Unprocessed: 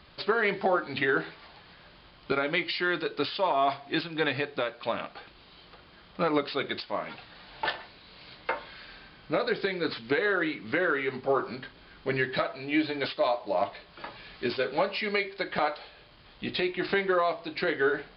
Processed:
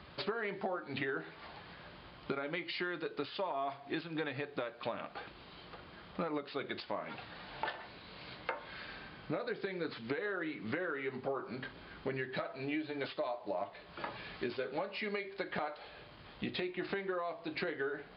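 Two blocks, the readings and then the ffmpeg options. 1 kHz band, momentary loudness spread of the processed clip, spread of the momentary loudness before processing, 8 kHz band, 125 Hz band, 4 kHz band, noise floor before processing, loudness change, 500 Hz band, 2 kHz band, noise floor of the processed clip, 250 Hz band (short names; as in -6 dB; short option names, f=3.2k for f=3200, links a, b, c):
-11.0 dB, 12 LU, 16 LU, n/a, -6.5 dB, -10.5 dB, -54 dBFS, -10.5 dB, -10.0 dB, -11.0 dB, -55 dBFS, -8.5 dB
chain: -af "highpass=57,highshelf=f=4k:g=-11,acompressor=threshold=-38dB:ratio=6,volume=2.5dB"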